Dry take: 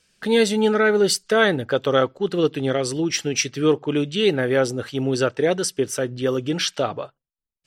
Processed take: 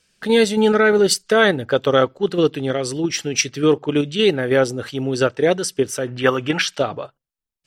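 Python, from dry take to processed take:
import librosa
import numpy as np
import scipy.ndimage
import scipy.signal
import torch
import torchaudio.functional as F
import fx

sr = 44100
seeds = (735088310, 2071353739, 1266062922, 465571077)

p1 = fx.level_steps(x, sr, step_db=20)
p2 = x + F.gain(torch.from_numpy(p1), -1.0).numpy()
p3 = fx.band_shelf(p2, sr, hz=1400.0, db=11.0, octaves=2.3, at=(6.07, 6.62))
y = F.gain(torch.from_numpy(p3), -1.0).numpy()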